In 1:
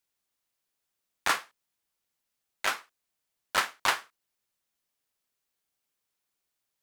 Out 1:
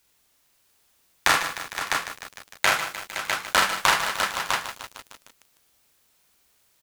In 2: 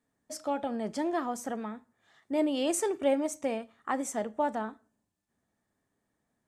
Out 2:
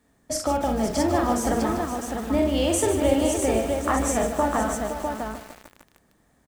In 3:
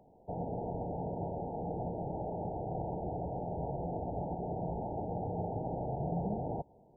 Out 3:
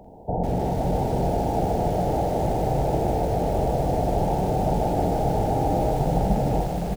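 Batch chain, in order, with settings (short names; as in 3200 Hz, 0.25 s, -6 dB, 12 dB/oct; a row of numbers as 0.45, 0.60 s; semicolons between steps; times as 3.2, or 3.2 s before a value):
octaver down 2 oct, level -3 dB; compressor 2.5:1, threshold -38 dBFS; on a send: tapped delay 45/66/146/517/653 ms -4.5/-12.5/-14/-10/-5.5 dB; on the sum: lo-fi delay 0.152 s, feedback 80%, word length 8-bit, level -11 dB; match loudness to -24 LUFS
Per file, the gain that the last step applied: +16.0, +13.0, +14.5 dB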